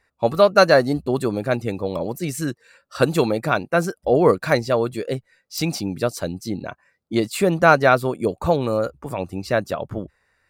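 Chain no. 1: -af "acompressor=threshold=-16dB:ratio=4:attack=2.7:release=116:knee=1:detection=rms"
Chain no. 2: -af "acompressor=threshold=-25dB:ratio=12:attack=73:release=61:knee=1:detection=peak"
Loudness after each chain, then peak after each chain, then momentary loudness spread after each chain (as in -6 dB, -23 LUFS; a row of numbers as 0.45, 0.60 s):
-25.0, -25.5 LUFS; -8.5, -5.5 dBFS; 8, 8 LU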